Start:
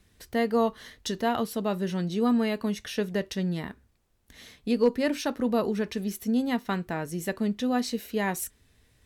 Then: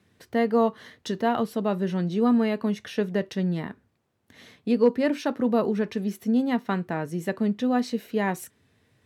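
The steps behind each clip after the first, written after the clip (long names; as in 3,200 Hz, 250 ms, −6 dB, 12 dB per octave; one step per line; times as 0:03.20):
high-pass filter 100 Hz 24 dB per octave
high-shelf EQ 3,600 Hz −11.5 dB
level +3 dB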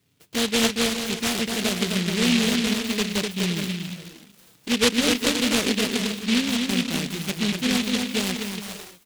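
on a send: bouncing-ball delay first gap 250 ms, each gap 0.65×, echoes 5
on the sum: flanger swept by the level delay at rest 7.4 ms, full sweep at −20.5 dBFS
short delay modulated by noise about 2,900 Hz, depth 0.34 ms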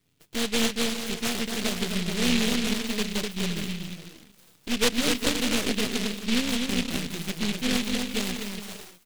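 gain on one half-wave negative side −12 dB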